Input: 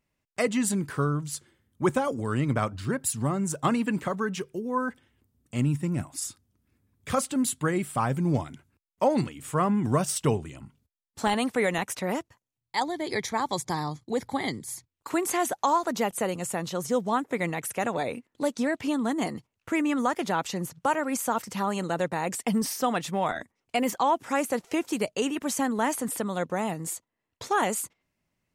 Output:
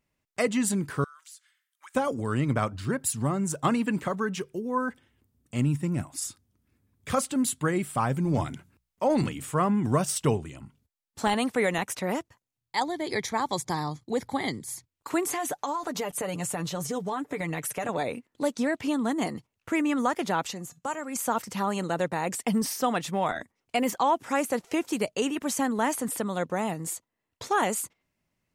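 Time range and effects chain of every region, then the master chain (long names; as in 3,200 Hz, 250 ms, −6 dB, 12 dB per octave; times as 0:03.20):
0:01.04–0:01.95: high-pass filter 1,400 Hz 24 dB per octave + downward compressor 4 to 1, threshold −47 dBFS
0:08.24–0:09.47: mains-hum notches 60/120/180 Hz + transient designer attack −4 dB, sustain +6 dB
0:15.26–0:17.89: comb filter 6.8 ms, depth 63% + downward compressor 12 to 1, threshold −26 dBFS
0:20.53–0:21.16: parametric band 7,200 Hz +10.5 dB 0.37 octaves + tuned comb filter 240 Hz, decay 0.16 s, harmonics odd
whole clip: no processing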